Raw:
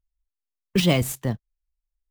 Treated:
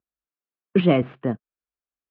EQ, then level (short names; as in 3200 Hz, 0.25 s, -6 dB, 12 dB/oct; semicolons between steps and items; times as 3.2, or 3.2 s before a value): air absorption 290 m; speaker cabinet 250–2400 Hz, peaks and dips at 550 Hz -4 dB, 890 Hz -9 dB, 2000 Hz -9 dB; +8.0 dB